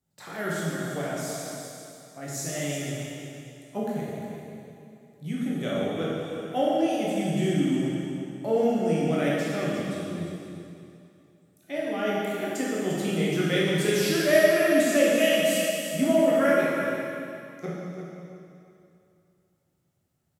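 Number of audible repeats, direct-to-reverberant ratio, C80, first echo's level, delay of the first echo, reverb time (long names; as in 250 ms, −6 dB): 1, −7.0 dB, −2.0 dB, −8.5 dB, 349 ms, 2.6 s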